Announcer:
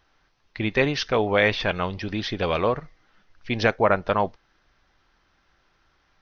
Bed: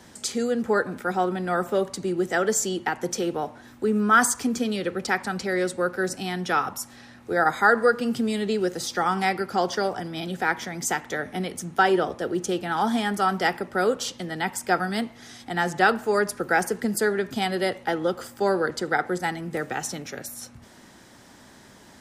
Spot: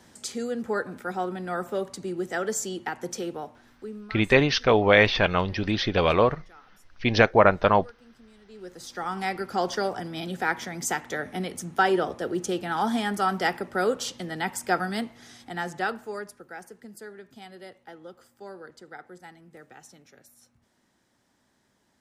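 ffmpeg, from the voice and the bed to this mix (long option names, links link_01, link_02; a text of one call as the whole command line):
ffmpeg -i stem1.wav -i stem2.wav -filter_complex "[0:a]adelay=3550,volume=2.5dB[link_01];[1:a]volume=21.5dB,afade=type=out:start_time=3.21:duration=0.97:silence=0.0668344,afade=type=in:start_time=8.47:duration=1.21:silence=0.0446684,afade=type=out:start_time=14.81:duration=1.64:silence=0.133352[link_02];[link_01][link_02]amix=inputs=2:normalize=0" out.wav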